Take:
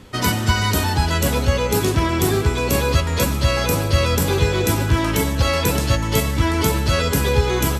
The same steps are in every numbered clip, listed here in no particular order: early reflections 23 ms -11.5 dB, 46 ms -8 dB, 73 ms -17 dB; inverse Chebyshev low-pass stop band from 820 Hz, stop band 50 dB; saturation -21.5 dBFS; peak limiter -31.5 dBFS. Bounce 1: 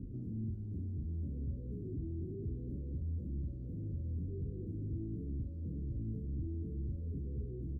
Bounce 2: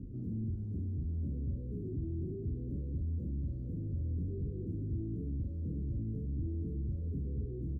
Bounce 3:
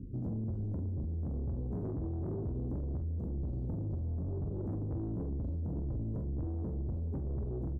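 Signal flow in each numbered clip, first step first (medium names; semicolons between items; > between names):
saturation > early reflections > peak limiter > inverse Chebyshev low-pass; early reflections > saturation > peak limiter > inverse Chebyshev low-pass; inverse Chebyshev low-pass > saturation > early reflections > peak limiter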